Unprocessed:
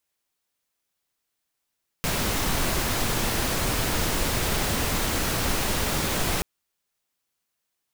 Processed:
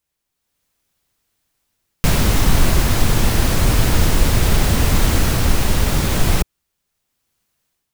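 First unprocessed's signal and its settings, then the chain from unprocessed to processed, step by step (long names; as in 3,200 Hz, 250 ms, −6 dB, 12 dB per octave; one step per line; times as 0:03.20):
noise pink, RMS −25 dBFS 4.38 s
low-shelf EQ 190 Hz +12 dB
automatic gain control gain up to 8.5 dB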